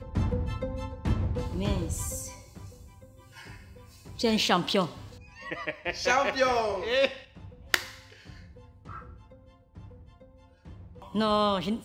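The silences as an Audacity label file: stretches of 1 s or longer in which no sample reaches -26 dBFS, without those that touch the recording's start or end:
2.180000	4.210000	silence
7.790000	11.150000	silence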